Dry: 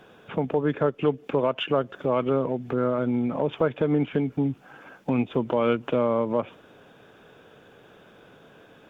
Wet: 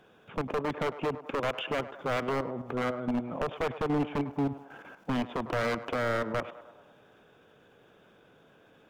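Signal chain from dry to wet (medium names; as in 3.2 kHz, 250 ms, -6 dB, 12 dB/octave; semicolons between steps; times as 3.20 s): level held to a coarse grid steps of 12 dB; wavefolder -23 dBFS; band-passed feedback delay 102 ms, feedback 65%, band-pass 790 Hz, level -12 dB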